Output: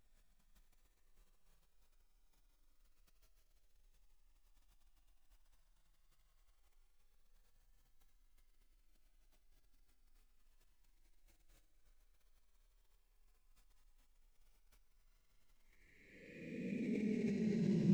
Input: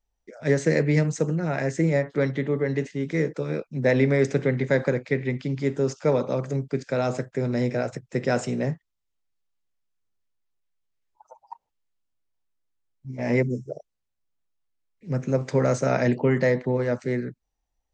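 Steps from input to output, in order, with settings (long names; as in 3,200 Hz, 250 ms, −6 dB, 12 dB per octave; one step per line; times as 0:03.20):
extreme stretch with random phases 27×, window 0.05 s, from 0:14.41
level that may fall only so fast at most 35 dB per second
level +6.5 dB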